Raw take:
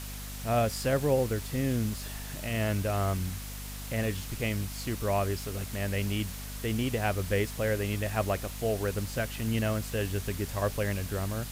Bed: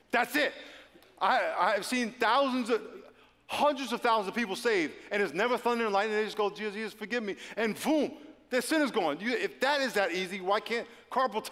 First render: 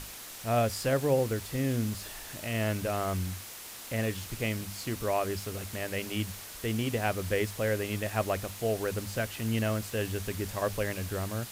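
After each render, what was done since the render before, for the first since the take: hum notches 50/100/150/200/250 Hz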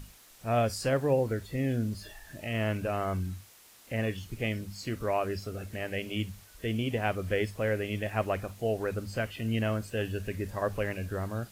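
noise print and reduce 12 dB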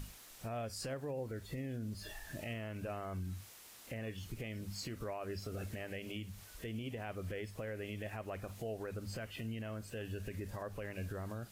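compression 6:1, threshold -37 dBFS, peak gain reduction 15 dB; peak limiter -32.5 dBFS, peak gain reduction 6.5 dB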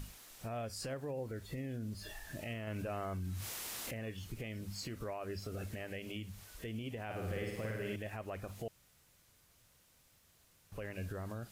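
2.67–3.91 s: level flattener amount 70%; 7.05–7.96 s: flutter echo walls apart 9.3 m, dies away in 1.2 s; 8.68–10.72 s: room tone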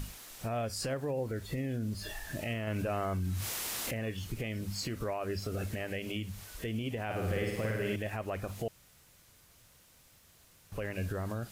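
trim +6.5 dB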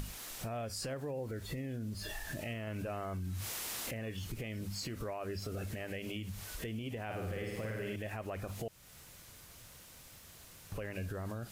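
in parallel at +1 dB: peak limiter -33 dBFS, peak gain reduction 11.5 dB; on the sum: compression 2:1, threshold -44 dBFS, peak gain reduction 10 dB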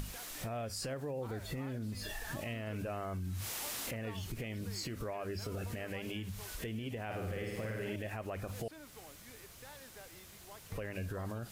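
add bed -26.5 dB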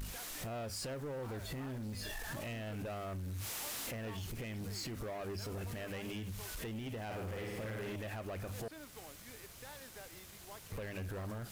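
in parallel at -10.5 dB: bit crusher 8-bit; on the sum: saturation -37.5 dBFS, distortion -11 dB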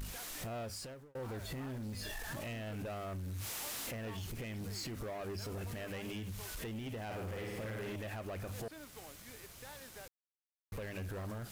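0.62–1.15 s: fade out; 10.08–10.72 s: mute

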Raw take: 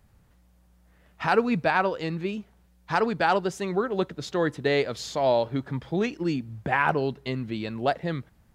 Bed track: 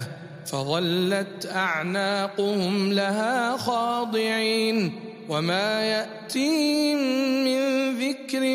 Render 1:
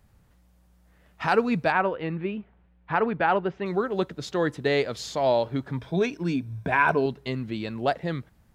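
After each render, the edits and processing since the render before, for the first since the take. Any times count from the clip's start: 1.72–3.66 s: low-pass 2.8 kHz 24 dB/octave; 5.78–7.06 s: rippled EQ curve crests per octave 1.6, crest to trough 9 dB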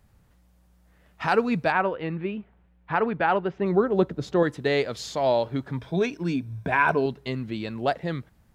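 3.58–4.43 s: tilt shelf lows +6 dB, about 1.3 kHz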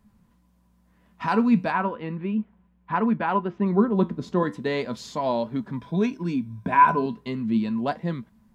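flange 0.36 Hz, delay 4.4 ms, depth 7.8 ms, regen +74%; small resonant body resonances 220/1000 Hz, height 16 dB, ringing for 75 ms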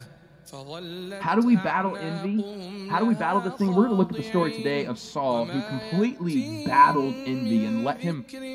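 add bed track -12.5 dB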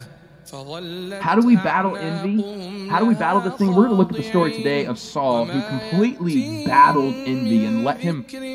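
trim +5.5 dB; peak limiter -2 dBFS, peak gain reduction 3 dB

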